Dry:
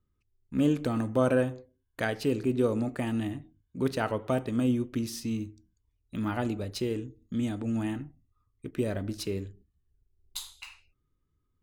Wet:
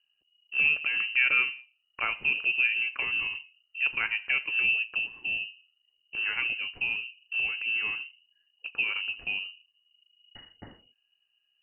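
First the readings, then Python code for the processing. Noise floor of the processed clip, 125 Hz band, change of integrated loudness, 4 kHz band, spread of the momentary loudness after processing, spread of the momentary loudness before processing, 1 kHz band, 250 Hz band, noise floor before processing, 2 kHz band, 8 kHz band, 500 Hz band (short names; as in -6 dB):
-76 dBFS, under -20 dB, +4.0 dB, +10.0 dB, 13 LU, 16 LU, -4.5 dB, under -25 dB, -77 dBFS, +16.0 dB, under -35 dB, -22.0 dB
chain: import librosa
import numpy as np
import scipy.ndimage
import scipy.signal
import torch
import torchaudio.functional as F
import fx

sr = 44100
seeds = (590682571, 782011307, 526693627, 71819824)

y = fx.freq_invert(x, sr, carrier_hz=2900)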